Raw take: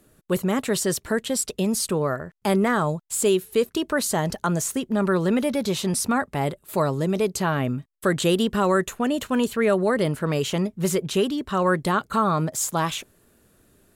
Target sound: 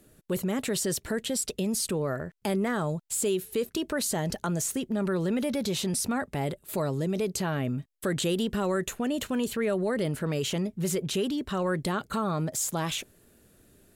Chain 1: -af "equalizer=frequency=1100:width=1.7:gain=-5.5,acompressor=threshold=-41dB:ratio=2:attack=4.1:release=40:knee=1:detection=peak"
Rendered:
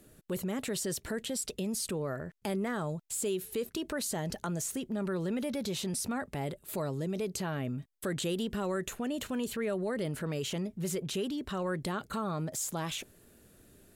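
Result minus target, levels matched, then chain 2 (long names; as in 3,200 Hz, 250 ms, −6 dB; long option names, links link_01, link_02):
downward compressor: peak gain reduction +5.5 dB
-af "equalizer=frequency=1100:width=1.7:gain=-5.5,acompressor=threshold=-30dB:ratio=2:attack=4.1:release=40:knee=1:detection=peak"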